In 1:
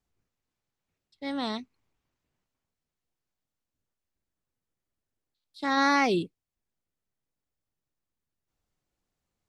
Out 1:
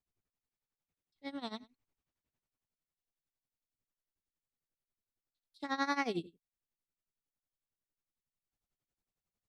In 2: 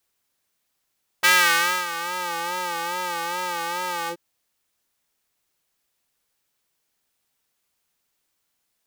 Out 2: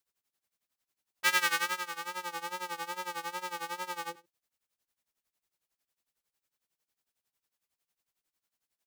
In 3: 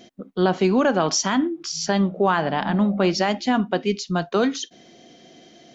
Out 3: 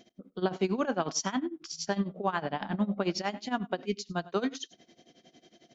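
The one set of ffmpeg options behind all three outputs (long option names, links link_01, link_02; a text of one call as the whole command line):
ffmpeg -i in.wav -af "aecho=1:1:102:0.0944,tremolo=f=11:d=0.87,volume=-7dB" out.wav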